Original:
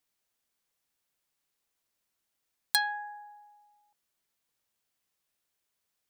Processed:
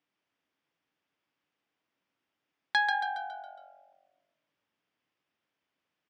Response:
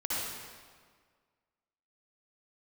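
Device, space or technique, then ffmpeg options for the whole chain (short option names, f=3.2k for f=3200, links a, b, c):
frequency-shifting delay pedal into a guitar cabinet: -filter_complex "[0:a]asettb=1/sr,asplit=3[a][b][c];[a]atrim=end=2.934[d];[b]atrim=start=2.93:end=3.43,asetpts=PTS-STARTPTS,afade=t=in:d=0.004:c=qsin,afade=t=out:st=0.496:d=0.004:c=qsin,asplit=2[e][f];[f]adelay=13,volume=-2dB[g];[e][g]amix=inputs=2:normalize=0,atrim=end_sample=22050[h];[c]atrim=start=3.426[i];[d][h]acrossfade=d=0.004:c1=hsin:c2=qsin[j];[j][i]acrossfade=d=0.004:c1=qsin:c2=hsin,asplit=7[k][l][m][n][o][p][q];[l]adelay=138,afreqshift=-46,volume=-6dB[r];[m]adelay=276,afreqshift=-92,volume=-12.6dB[s];[n]adelay=414,afreqshift=-138,volume=-19.1dB[t];[o]adelay=552,afreqshift=-184,volume=-25.7dB[u];[p]adelay=690,afreqshift=-230,volume=-32.2dB[v];[q]adelay=828,afreqshift=-276,volume=-38.8dB[w];[k][r][s][t][u][v][w]amix=inputs=7:normalize=0,highpass=110,equalizer=f=160:t=q:w=4:g=3,equalizer=f=290:t=q:w=4:g=7,equalizer=f=4.1k:t=q:w=4:g=-10,lowpass=f=4.3k:w=0.5412,lowpass=f=4.3k:w=1.3066,volume=3dB"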